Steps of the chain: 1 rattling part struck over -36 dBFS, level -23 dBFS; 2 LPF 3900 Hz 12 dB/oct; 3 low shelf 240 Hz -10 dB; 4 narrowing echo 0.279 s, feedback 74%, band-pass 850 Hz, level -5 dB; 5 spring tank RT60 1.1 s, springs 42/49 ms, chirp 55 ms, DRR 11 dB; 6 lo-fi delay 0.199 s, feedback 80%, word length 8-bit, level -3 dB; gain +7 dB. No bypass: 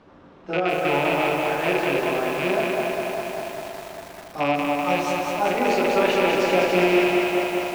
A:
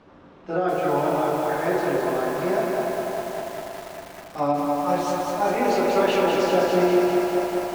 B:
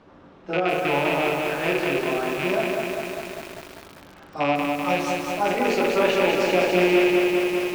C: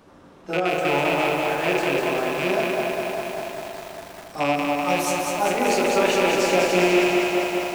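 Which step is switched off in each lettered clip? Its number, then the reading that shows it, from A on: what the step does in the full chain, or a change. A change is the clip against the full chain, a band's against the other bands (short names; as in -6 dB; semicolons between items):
1, 2 kHz band -6.5 dB; 4, 1 kHz band -2.0 dB; 2, 8 kHz band +7.0 dB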